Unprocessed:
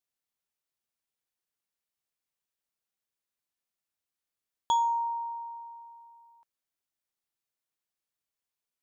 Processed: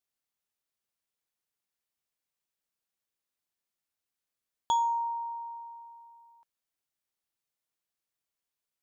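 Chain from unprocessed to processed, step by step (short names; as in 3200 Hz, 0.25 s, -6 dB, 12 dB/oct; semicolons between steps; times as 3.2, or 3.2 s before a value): dynamic EQ 2000 Hz, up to -6 dB, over -46 dBFS, Q 1.3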